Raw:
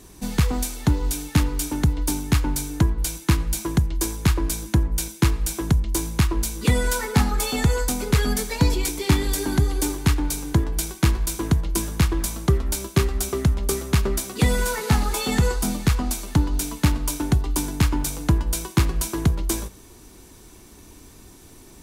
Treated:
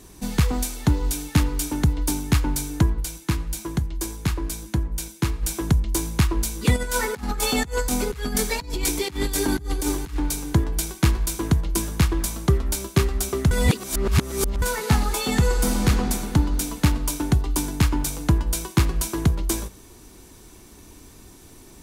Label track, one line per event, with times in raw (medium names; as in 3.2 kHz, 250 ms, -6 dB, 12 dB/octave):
3.000000	5.430000	flange 1.1 Hz, delay 5 ms, depth 2.1 ms, regen -79%
6.760000	10.160000	compressor with a negative ratio -24 dBFS, ratio -0.5
13.510000	14.620000	reverse
15.460000	15.870000	reverb throw, RT60 2.9 s, DRR -1.5 dB